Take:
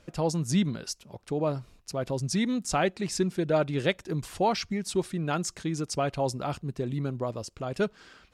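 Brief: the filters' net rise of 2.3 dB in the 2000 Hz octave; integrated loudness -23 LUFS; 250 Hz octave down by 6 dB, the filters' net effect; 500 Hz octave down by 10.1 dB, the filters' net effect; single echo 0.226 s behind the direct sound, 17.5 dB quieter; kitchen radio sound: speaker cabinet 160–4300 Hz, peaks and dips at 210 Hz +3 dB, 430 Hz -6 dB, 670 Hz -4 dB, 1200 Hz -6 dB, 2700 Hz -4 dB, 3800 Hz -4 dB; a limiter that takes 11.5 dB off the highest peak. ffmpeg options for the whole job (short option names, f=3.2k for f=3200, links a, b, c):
-af "equalizer=f=250:t=o:g=-6.5,equalizer=f=500:t=o:g=-7,equalizer=f=2k:t=o:g=5.5,alimiter=limit=-22.5dB:level=0:latency=1,highpass=160,equalizer=f=210:t=q:w=4:g=3,equalizer=f=430:t=q:w=4:g=-6,equalizer=f=670:t=q:w=4:g=-4,equalizer=f=1.2k:t=q:w=4:g=-6,equalizer=f=2.7k:t=q:w=4:g=-4,equalizer=f=3.8k:t=q:w=4:g=-4,lowpass=f=4.3k:w=0.5412,lowpass=f=4.3k:w=1.3066,aecho=1:1:226:0.133,volume=14.5dB"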